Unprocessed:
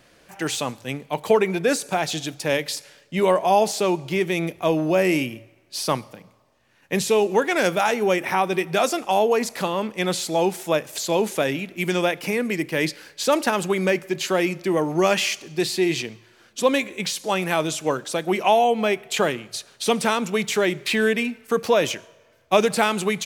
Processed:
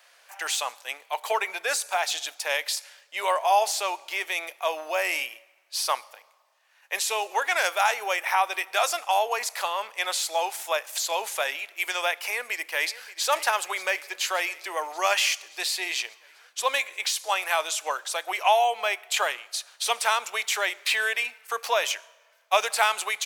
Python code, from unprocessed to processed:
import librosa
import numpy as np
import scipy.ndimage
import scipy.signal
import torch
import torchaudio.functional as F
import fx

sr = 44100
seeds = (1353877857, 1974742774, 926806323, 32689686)

y = fx.echo_throw(x, sr, start_s=12.16, length_s=1.08, ms=580, feedback_pct=70, wet_db=-15.5)
y = scipy.signal.sosfilt(scipy.signal.butter(4, 710.0, 'highpass', fs=sr, output='sos'), y)
y = fx.high_shelf(y, sr, hz=12000.0, db=3.5)